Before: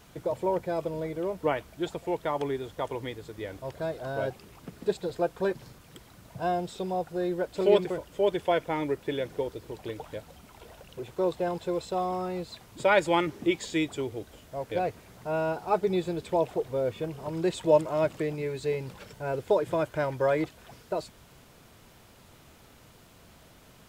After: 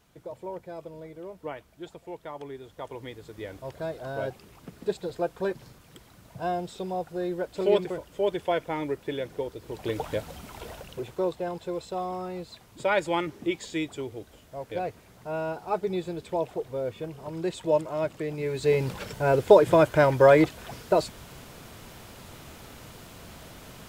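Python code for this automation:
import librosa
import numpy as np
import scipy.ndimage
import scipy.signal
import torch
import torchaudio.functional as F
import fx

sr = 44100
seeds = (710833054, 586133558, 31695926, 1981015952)

y = fx.gain(x, sr, db=fx.line((2.46, -9.5), (3.4, -1.0), (9.57, -1.0), (9.99, 8.5), (10.7, 8.5), (11.37, -2.5), (18.21, -2.5), (18.83, 9.0)))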